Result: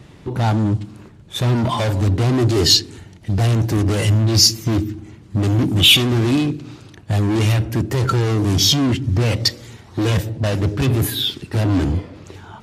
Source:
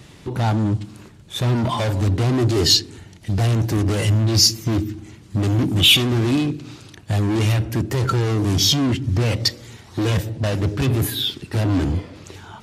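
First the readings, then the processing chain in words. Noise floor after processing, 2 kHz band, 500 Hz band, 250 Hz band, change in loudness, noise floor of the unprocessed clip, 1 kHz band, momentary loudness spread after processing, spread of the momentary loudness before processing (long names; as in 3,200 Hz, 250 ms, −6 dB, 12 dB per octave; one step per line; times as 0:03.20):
−43 dBFS, +2.0 dB, +2.0 dB, +2.0 dB, +2.0 dB, −45 dBFS, +2.0 dB, 13 LU, 14 LU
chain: one half of a high-frequency compander decoder only
level +2 dB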